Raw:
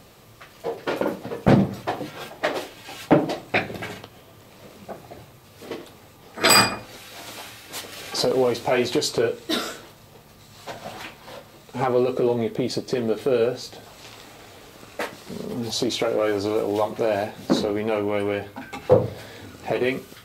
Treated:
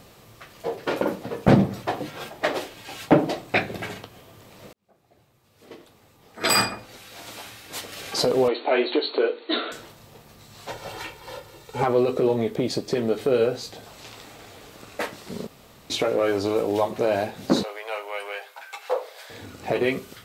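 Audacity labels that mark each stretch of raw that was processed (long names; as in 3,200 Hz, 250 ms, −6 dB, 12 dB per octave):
4.730000	7.950000	fade in
8.480000	9.720000	linear-phase brick-wall band-pass 240–4,500 Hz
10.700000	11.830000	comb filter 2.2 ms
15.470000	15.900000	fill with room tone
17.630000	19.300000	Bessel high-pass filter 860 Hz, order 8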